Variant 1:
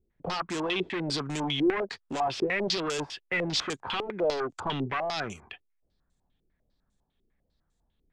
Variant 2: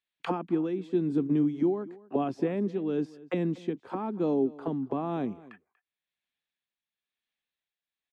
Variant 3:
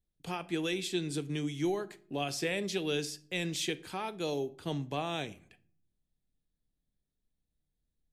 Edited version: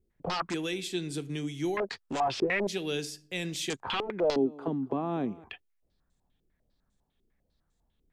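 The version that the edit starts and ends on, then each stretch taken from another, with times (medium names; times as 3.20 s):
1
0.54–1.77 s: from 3
2.67–3.70 s: from 3
4.36–5.44 s: from 2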